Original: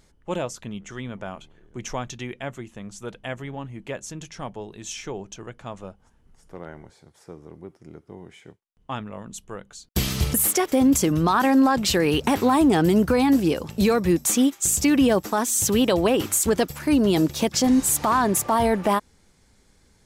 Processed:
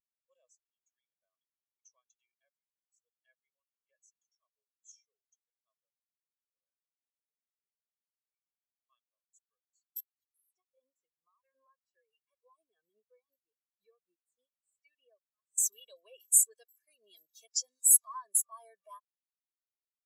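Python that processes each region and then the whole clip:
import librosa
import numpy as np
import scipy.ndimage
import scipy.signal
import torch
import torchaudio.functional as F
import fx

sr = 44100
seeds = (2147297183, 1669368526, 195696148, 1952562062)

y = fx.chain(x, sr, fx.high_shelf(hz=3300.0, db=-7.5),
    fx.filter_lfo_notch(shape='saw_down', hz=2.6, low_hz=590.0, high_hz=7400.0, q=1.7),
    fx.upward_expand(threshold_db=-26.0, expansion=2.5), at=(10.0, 15.58))
y = np.diff(y, prepend=0.0)
y = y + 0.78 * np.pad(y, (int(1.8 * sr / 1000.0), 0))[:len(y)]
y = fx.spectral_expand(y, sr, expansion=2.5)
y = y * librosa.db_to_amplitude(-3.0)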